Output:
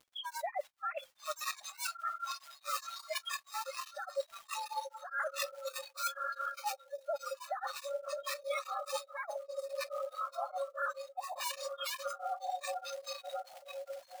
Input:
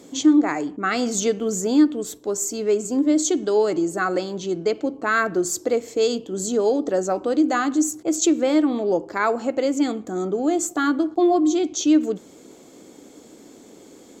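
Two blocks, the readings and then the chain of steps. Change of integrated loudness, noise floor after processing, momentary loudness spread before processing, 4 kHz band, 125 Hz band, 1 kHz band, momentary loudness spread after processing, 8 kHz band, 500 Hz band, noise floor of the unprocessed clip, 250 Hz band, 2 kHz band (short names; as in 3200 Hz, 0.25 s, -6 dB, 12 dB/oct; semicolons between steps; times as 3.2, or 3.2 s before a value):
-18.0 dB, -65 dBFS, 7 LU, -8.5 dB, under -40 dB, -10.5 dB, 5 LU, -18.0 dB, -18.5 dB, -47 dBFS, under -40 dB, -13.0 dB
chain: sine-wave speech; frequency shift +14 Hz; diffused feedback echo 1.191 s, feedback 61%, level -6.5 dB; soft clip -14 dBFS, distortion -10 dB; spectral gate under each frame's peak -25 dB strong; short-mantissa float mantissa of 2-bit; brick-wall FIR high-pass 550 Hz; spectral noise reduction 22 dB; crackle 160/s -63 dBFS; reverse; compressor 12:1, threshold -45 dBFS, peak gain reduction 22.5 dB; reverse; beating tremolo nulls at 4.8 Hz; gain +13 dB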